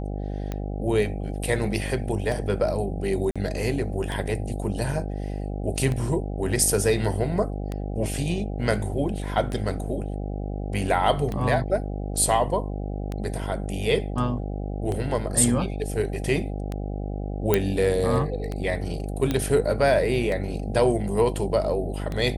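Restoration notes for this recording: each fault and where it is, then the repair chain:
buzz 50 Hz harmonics 16 -30 dBFS
tick 33 1/3 rpm -17 dBFS
3.31–3.36 s: dropout 46 ms
17.54 s: pop -5 dBFS
19.31 s: pop -11 dBFS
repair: de-click; de-hum 50 Hz, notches 16; interpolate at 3.31 s, 46 ms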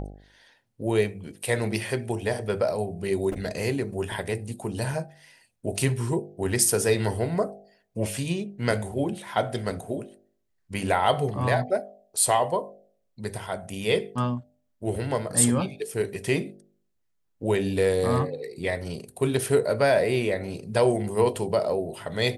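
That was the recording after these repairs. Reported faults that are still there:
nothing left

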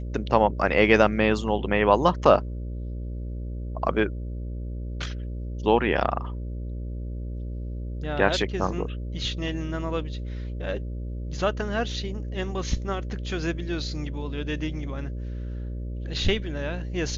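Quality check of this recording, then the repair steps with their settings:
buzz 60 Hz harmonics 10 -32 dBFS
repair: de-hum 60 Hz, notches 10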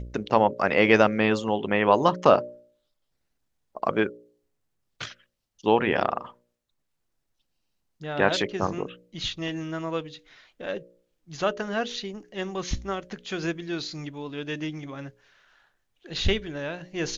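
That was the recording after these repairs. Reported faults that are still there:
nothing left

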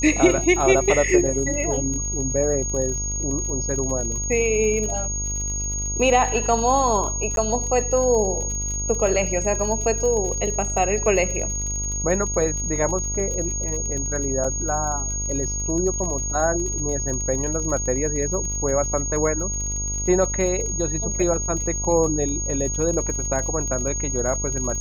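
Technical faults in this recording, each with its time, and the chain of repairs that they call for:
buzz 50 Hz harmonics 24 -29 dBFS
crackle 50 per s -29 dBFS
whine 6.6 kHz -26 dBFS
7.36–7.37 s: dropout 12 ms
14.44–14.45 s: dropout 5 ms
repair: de-click; de-hum 50 Hz, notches 24; band-stop 6.6 kHz, Q 30; interpolate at 7.36 s, 12 ms; interpolate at 14.44 s, 5 ms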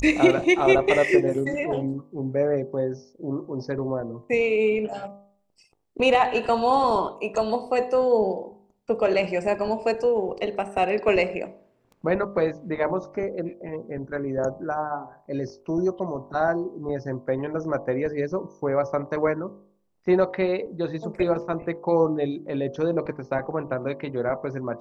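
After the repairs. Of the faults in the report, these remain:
nothing left

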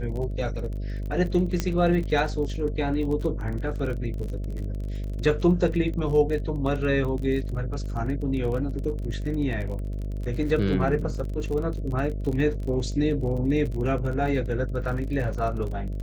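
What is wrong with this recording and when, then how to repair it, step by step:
buzz 50 Hz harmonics 13 -30 dBFS
crackle 34 per s -32 dBFS
1.60 s: pop -11 dBFS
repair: de-click; de-hum 50 Hz, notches 13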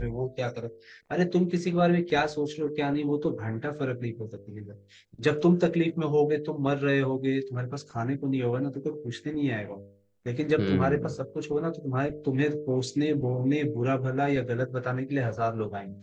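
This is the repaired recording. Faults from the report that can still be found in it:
nothing left

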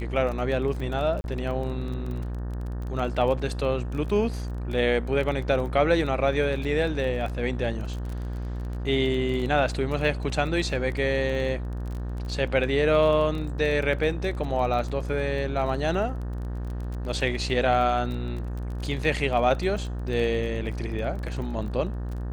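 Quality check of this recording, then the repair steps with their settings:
buzz 60 Hz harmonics 31 -31 dBFS
crackle 21 per s -32 dBFS
1.21–1.24 s: dropout 31 ms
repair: de-click; de-hum 60 Hz, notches 31; interpolate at 1.21 s, 31 ms

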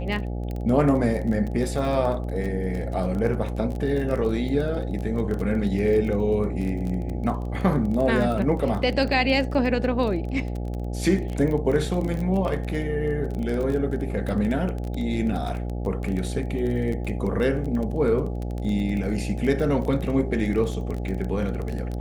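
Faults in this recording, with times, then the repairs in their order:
buzz 60 Hz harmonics 14 -29 dBFS
crackle 22 per s -28 dBFS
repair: de-click; de-hum 60 Hz, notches 14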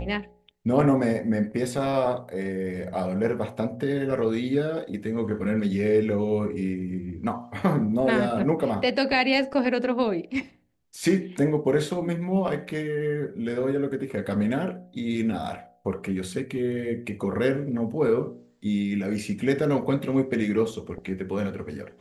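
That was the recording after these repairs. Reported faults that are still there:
nothing left

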